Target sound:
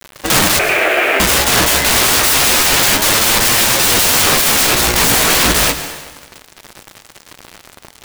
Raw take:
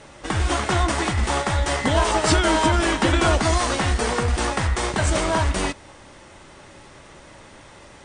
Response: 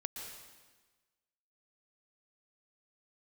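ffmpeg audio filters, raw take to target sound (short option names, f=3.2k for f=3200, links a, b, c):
-filter_complex "[0:a]asettb=1/sr,asplit=3[a][b][c];[a]atrim=end=3.834[d];[b]atrim=start=3.83:end=4.75,asetpts=PTS-STARTPTS,afade=t=in:d=0.004:c=qsin,afade=t=out:st=0.916:d=0.004:c=qsin,acontrast=59[e];[c]atrim=start=4.746[f];[d][e]acrossfade=d=0.004:c1=hsin:c2=qsin[g];[g][f]acrossfade=d=0.004:c1=qsin:c2=hsin,aeval=exprs='(mod(10*val(0)+1,2)-1)/10':c=same,aeval=exprs='0.422*(cos(1*acos(clip(val(0)/0.422,-1,1)))-cos(1*PI/2))+0.0168*(cos(3*acos(clip(val(0)/0.422,-1,1)))-cos(3*PI/2))+0.00266*(cos(5*acos(clip(val(0)/0.422,-1,1)))-cos(5*PI/2))+0.0422*(cos(7*acos(clip(val(0)/0.422,-1,1)))-cos(7*PI/2))':c=same,flanger=delay=8.5:depth=8.7:regen=-17:speed=0.29:shape=sinusoidal,aeval=exprs='0.0316*(abs(mod(val(0)/0.0316+3,4)-2)-1)':c=same,asettb=1/sr,asplit=3[h][i][j];[h]atrim=end=0.594[k];[i]atrim=start=0.59:end=1.2,asetpts=PTS-STARTPTS,afade=t=in:d=0.004:c=qsin,afade=t=out:st=0.606:d=0.004:c=qsin,highpass=f=350:w=0.5412,highpass=f=350:w=1.3066,equalizer=f=390:t=q:w=4:g=8,equalizer=f=640:t=q:w=4:g=9,equalizer=f=1k:t=q:w=4:g=-7,equalizer=f=1.6k:t=q:w=4:g=4,equalizer=f=2.4k:t=q:w=4:g=9,lowpass=f=2.6k:w=0.5412,lowpass=f=2.6k:w=1.3066[l];[j]atrim=start=1.196[m];[k][l]acrossfade=d=0.004:c1=hsin:c2=qsin[n];[n][m]acrossfade=d=0.004:c1=qsin:c2=hsin,acrusher=bits=8:mix=0:aa=0.000001,asplit=2[o][p];[1:a]atrim=start_sample=2205[q];[p][q]afir=irnorm=-1:irlink=0,volume=-4dB[r];[o][r]amix=inputs=2:normalize=0,acrusher=bits=5:mode=log:mix=0:aa=0.000001,alimiter=level_in=26dB:limit=-1dB:release=50:level=0:latency=1,volume=-3dB"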